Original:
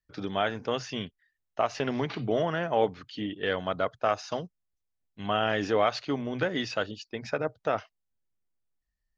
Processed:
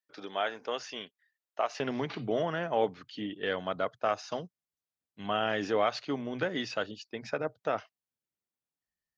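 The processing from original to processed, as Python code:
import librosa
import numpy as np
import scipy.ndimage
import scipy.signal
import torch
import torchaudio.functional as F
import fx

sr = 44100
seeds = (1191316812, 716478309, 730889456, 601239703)

y = fx.highpass(x, sr, hz=fx.steps((0.0, 410.0), (1.8, 130.0)), slope=12)
y = y * 10.0 ** (-3.0 / 20.0)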